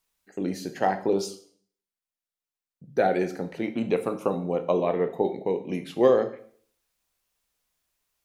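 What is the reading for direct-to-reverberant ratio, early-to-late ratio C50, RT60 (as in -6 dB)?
7.5 dB, 13.0 dB, 0.55 s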